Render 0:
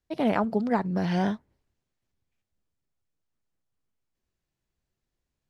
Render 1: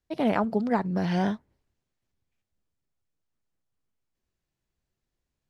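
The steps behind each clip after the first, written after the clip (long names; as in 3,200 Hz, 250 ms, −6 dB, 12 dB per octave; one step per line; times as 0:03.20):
no processing that can be heard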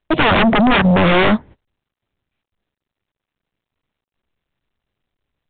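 noise gate −53 dBFS, range −26 dB
sine wavefolder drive 18 dB, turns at −11 dBFS
level +2 dB
mu-law 64 kbit/s 8,000 Hz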